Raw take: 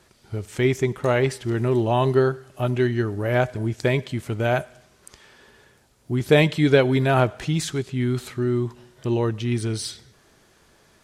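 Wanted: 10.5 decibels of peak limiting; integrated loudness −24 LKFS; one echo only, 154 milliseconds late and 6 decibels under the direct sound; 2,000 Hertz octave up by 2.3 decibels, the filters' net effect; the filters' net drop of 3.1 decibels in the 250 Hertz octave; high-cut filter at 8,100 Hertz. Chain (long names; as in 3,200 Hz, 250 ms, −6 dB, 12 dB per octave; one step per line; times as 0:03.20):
low-pass filter 8,100 Hz
parametric band 250 Hz −4.5 dB
parametric band 2,000 Hz +3 dB
brickwall limiter −14.5 dBFS
single-tap delay 154 ms −6 dB
level +1 dB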